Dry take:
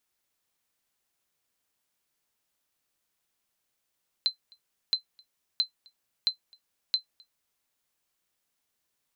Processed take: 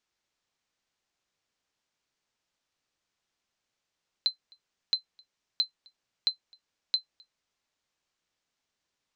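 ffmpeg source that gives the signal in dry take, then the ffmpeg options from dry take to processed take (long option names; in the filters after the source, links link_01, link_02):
-f lavfi -i "aevalsrc='0.168*(sin(2*PI*4080*mod(t,0.67))*exp(-6.91*mod(t,0.67)/0.11)+0.0335*sin(2*PI*4080*max(mod(t,0.67)-0.26,0))*exp(-6.91*max(mod(t,0.67)-0.26,0)/0.11))':duration=3.35:sample_rate=44100"
-af "lowpass=frequency=6800:width=0.5412,lowpass=frequency=6800:width=1.3066"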